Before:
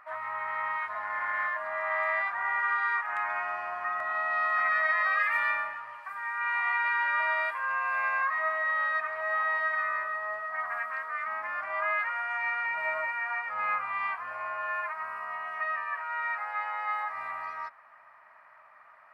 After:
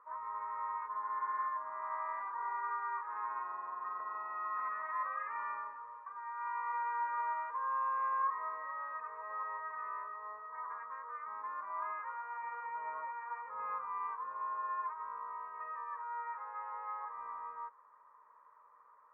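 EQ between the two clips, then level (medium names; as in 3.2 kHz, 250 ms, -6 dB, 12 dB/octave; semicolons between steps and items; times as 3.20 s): two resonant band-passes 690 Hz, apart 1.1 oct; distance through air 310 m; tilt EQ -3 dB/octave; +2.5 dB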